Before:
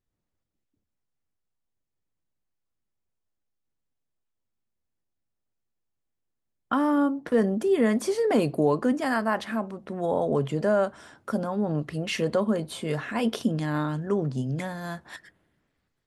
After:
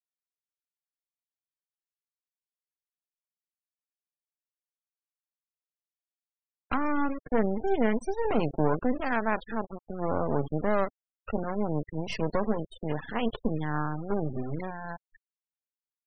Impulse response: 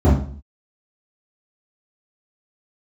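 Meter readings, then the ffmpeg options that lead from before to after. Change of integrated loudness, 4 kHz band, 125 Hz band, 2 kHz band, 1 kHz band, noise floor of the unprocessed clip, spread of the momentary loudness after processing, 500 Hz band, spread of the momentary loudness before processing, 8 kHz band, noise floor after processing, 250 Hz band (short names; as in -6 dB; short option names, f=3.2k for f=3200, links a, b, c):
-4.0 dB, -7.5 dB, -3.5 dB, -2.5 dB, -1.0 dB, -81 dBFS, 9 LU, -4.5 dB, 9 LU, under -10 dB, under -85 dBFS, -4.5 dB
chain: -af "acrusher=bits=3:dc=4:mix=0:aa=0.000001,afftfilt=real='re*gte(hypot(re,im),0.0251)':imag='im*gte(hypot(re,im),0.0251)':win_size=1024:overlap=0.75"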